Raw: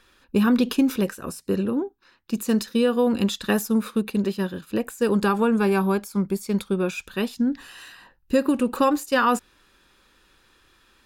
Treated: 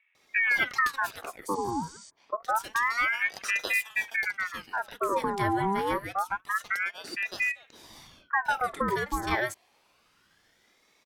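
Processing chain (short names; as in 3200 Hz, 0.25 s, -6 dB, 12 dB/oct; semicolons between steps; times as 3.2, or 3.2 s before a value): spectral repair 1.42–1.92, 1100–8500 Hz before; bands offset in time lows, highs 0.15 s, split 770 Hz; ring modulator with a swept carrier 1400 Hz, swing 60%, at 0.27 Hz; gain -3.5 dB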